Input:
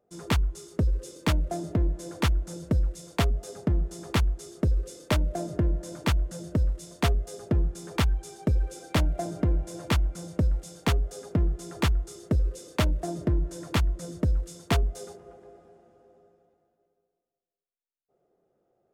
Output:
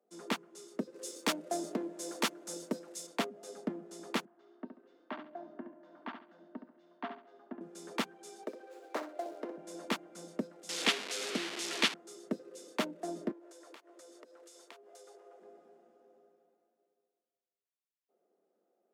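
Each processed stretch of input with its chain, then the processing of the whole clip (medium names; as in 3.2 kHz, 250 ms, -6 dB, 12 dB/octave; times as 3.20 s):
0.94–3.07 s: tone controls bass -6 dB, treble +7 dB + waveshaping leveller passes 1
4.25–7.61 s: cabinet simulation 240–3100 Hz, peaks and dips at 260 Hz +7 dB, 500 Hz -9 dB, 720 Hz +7 dB, 1.1 kHz +6 dB, 1.6 kHz +5 dB, 2.5 kHz -5 dB + feedback comb 900 Hz, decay 0.16 s, harmonics odd, mix 70% + feedback delay 69 ms, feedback 27%, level -8 dB
8.43–9.58 s: median filter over 15 samples + high-pass 360 Hz 24 dB/octave + flutter echo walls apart 10.7 m, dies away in 0.32 s
10.69–11.94 s: one-bit delta coder 64 kbps, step -29.5 dBFS + frequency weighting D
13.31–15.40 s: high-pass 390 Hz 24 dB/octave + compression 10:1, threshold -45 dBFS
whole clip: steep high-pass 200 Hz 48 dB/octave; treble shelf 9.7 kHz -5.5 dB; trim -5.5 dB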